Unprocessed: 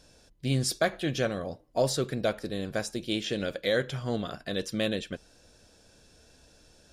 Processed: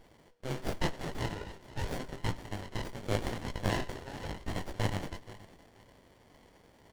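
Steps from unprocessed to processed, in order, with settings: every band turned upside down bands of 500 Hz; in parallel at +2 dB: compression, threshold -38 dBFS, peak gain reduction 16.5 dB; on the sum: Butterworth band-pass 2.7 kHz, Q 0.66; feedback delay 478 ms, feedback 23%, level -17 dB; algorithmic reverb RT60 2.1 s, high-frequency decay 0.65×, pre-delay 70 ms, DRR 18 dB; chorus 0.87 Hz, delay 17.5 ms, depth 4.2 ms; sliding maximum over 33 samples; trim +5.5 dB

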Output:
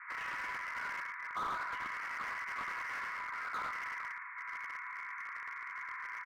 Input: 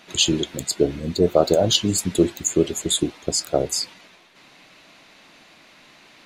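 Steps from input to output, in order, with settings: Chebyshev band-pass 980–2200 Hz, order 5; gain riding within 4 dB 0.5 s; multi-tap echo 64/80/101/106/111/454 ms -15.5/-18/-6/-15/-12.5/-16.5 dB; simulated room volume 150 m³, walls mixed, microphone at 0.62 m; slew-rate limiter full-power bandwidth 11 Hz; trim +6.5 dB

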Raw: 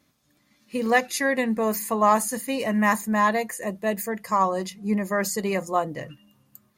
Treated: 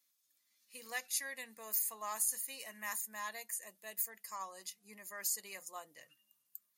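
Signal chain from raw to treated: differentiator; trim -6 dB

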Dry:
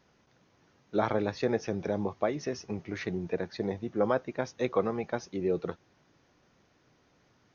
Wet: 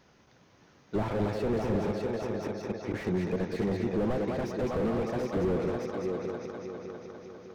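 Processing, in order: 1.90–2.94 s: inverted gate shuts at -24 dBFS, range -25 dB; multi-head delay 201 ms, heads first and third, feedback 61%, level -10 dB; slew-rate limiter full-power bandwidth 11 Hz; trim +5 dB

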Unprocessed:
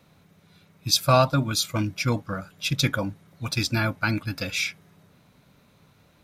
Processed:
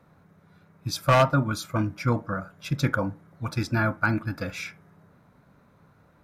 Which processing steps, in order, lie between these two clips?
wow and flutter 25 cents; resonant high shelf 2.1 kHz -10 dB, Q 1.5; wavefolder -11 dBFS; on a send: reverberation RT60 0.30 s, pre-delay 29 ms, DRR 15 dB

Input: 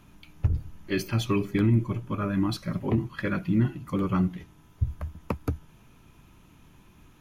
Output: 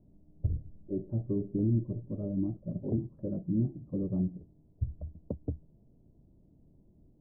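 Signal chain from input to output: elliptic low-pass 630 Hz, stop band 80 dB; trim -5.5 dB

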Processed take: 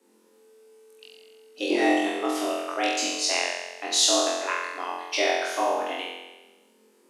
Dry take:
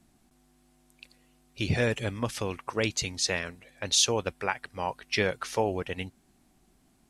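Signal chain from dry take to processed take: frequency shift +190 Hz; flutter echo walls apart 3.9 m, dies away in 1.1 s; trim -2 dB

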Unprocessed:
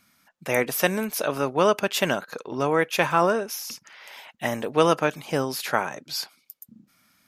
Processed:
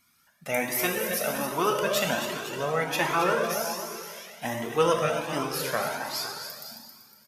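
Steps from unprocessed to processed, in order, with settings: treble shelf 5.3 kHz +5 dB; on a send: multi-tap echo 270/508 ms -9/-13 dB; on the sum: plate-style reverb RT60 1.9 s, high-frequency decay 0.95×, DRR 1.5 dB; Shepard-style flanger rising 1.3 Hz; trim -1.5 dB

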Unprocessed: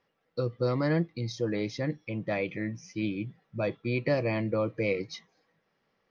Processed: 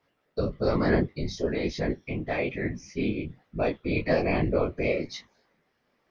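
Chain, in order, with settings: whisper effect; detune thickener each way 39 cents; trim +6.5 dB

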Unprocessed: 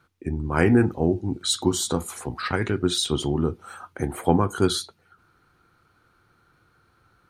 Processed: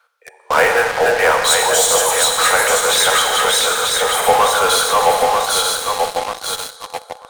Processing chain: backward echo that repeats 469 ms, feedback 62%, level -2 dB; steep high-pass 470 Hz 96 dB/octave; Schroeder reverb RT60 1.9 s, combs from 33 ms, DRR 6 dB; in parallel at -7 dB: fuzz box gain 36 dB, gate -38 dBFS; on the sum: dynamic bell 4.5 kHz, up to -6 dB, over -33 dBFS, Q 2.1; trim +5.5 dB

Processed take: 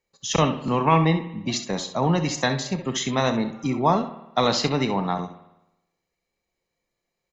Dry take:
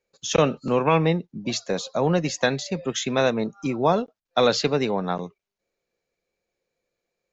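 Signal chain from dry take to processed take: comb 1 ms, depth 47%; early reflections 31 ms -14 dB, 66 ms -11 dB; on a send at -13 dB: reverberation RT60 0.95 s, pre-delay 69 ms

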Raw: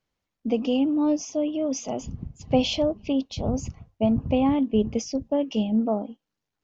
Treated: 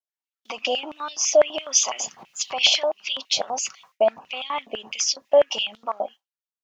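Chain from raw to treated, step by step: fade out at the end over 1.38 s; recorder AGC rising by 28 dB/s; peak limiter -17 dBFS, peak gain reduction 7.5 dB; treble shelf 3.1 kHz +9 dB; comb 5.3 ms, depth 31%; expander -37 dBFS; step-sequenced high-pass 12 Hz 670–3400 Hz; trim +3.5 dB

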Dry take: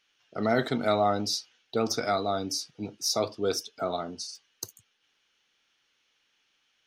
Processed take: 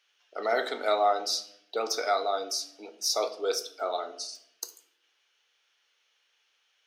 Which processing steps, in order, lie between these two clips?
high-pass 420 Hz 24 dB/octave; reverberation RT60 0.75 s, pre-delay 7 ms, DRR 9 dB

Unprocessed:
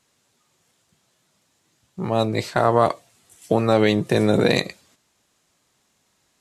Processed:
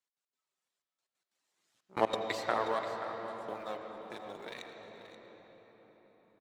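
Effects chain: partial rectifier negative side -7 dB; Doppler pass-by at 1.98 s, 16 m/s, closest 2.4 m; frequency weighting A; in parallel at -8 dB: small samples zeroed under -49 dBFS; on the sum: reverb removal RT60 0.79 s; trance gate "x.x.xxxxxx.." 183 bpm -24 dB; delay 531 ms -12.5 dB; on a send at -4 dB: reverberation RT60 5.6 s, pre-delay 75 ms

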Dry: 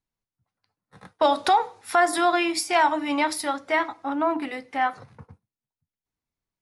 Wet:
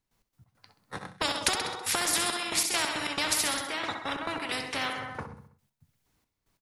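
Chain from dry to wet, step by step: trance gate ".x.x.xxxx..x" 137 bpm -12 dB; on a send: feedback delay 65 ms, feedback 50%, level -13 dB; on the sum: spectrum-flattening compressor 4:1

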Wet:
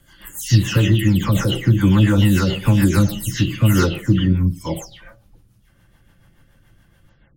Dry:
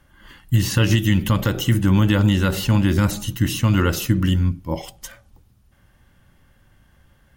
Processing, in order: delay that grows with frequency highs early, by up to 270 ms; rotary cabinet horn 7 Hz; trim +4.5 dB

